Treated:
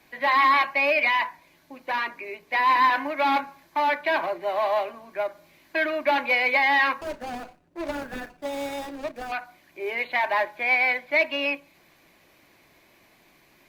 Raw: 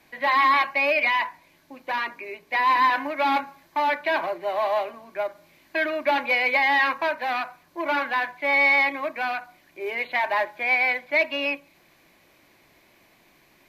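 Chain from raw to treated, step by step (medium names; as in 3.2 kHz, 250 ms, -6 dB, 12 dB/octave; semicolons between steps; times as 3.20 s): 7.01–9.32 s: median filter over 41 samples; Opus 48 kbps 48 kHz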